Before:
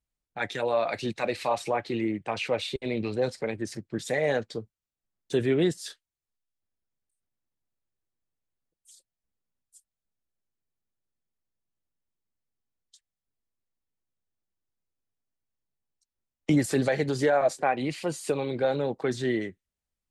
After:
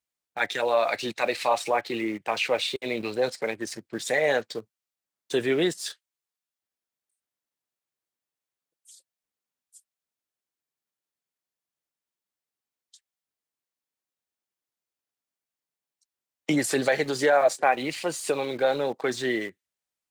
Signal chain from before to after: high-pass 620 Hz 6 dB/octave; in parallel at -8 dB: small samples zeroed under -40.5 dBFS; on the sum: trim +3 dB

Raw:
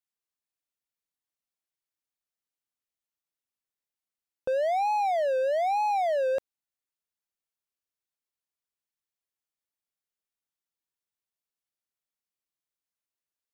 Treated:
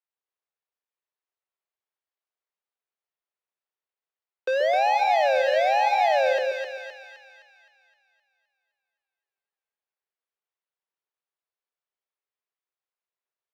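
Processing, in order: square wave that keeps the level; elliptic high-pass 380 Hz, stop band 40 dB; distance through air 250 m; two-band feedback delay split 1.1 kHz, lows 130 ms, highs 259 ms, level -3.5 dB

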